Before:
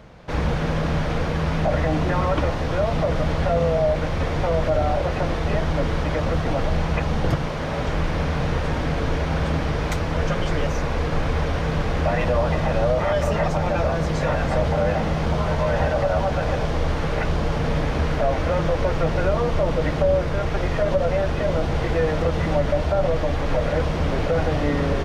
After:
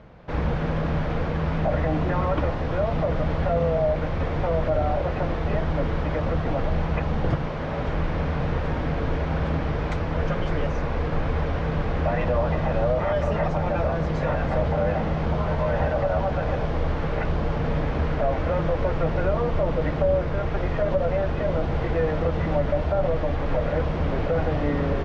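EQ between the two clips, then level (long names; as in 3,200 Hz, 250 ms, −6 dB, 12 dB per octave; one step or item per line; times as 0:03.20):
low-pass filter 2,500 Hz 6 dB per octave
high-frequency loss of the air 56 metres
−2.0 dB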